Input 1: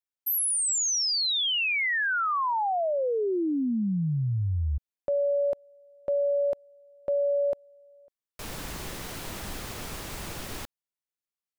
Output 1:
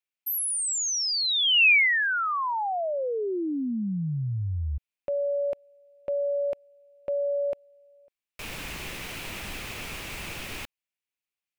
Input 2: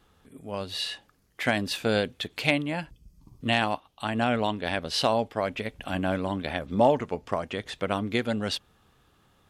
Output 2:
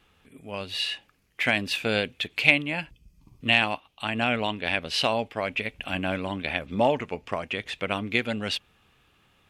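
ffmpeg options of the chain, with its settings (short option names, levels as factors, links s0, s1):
-af "equalizer=f=2500:t=o:w=0.74:g=11.5,volume=0.794"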